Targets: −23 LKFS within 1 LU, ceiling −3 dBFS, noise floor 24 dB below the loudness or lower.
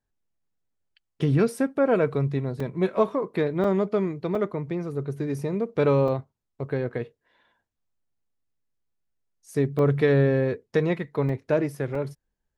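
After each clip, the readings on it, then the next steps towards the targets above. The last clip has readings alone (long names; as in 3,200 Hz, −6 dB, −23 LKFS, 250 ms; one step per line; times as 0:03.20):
number of dropouts 7; longest dropout 3.4 ms; integrated loudness −25.5 LKFS; sample peak −9.0 dBFS; target loudness −23.0 LKFS
→ repair the gap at 0:02.60/0:03.64/0:04.35/0:06.08/0:09.79/0:11.29/0:11.95, 3.4 ms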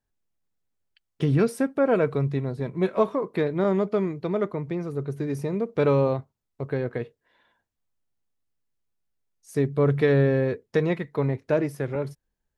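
number of dropouts 0; integrated loudness −25.5 LKFS; sample peak −9.0 dBFS; target loudness −23.0 LKFS
→ level +2.5 dB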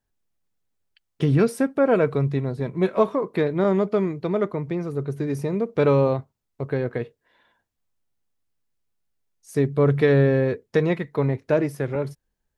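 integrated loudness −23.0 LKFS; sample peak −6.5 dBFS; background noise floor −79 dBFS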